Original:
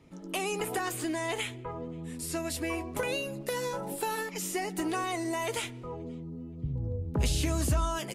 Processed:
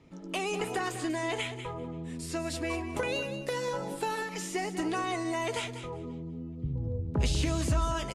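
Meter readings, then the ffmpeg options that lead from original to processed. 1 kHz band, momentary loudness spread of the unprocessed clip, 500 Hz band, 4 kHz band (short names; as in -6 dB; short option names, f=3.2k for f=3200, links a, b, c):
+0.5 dB, 11 LU, +0.5 dB, 0.0 dB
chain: -af "lowpass=7.2k,aecho=1:1:194|388:0.282|0.0451"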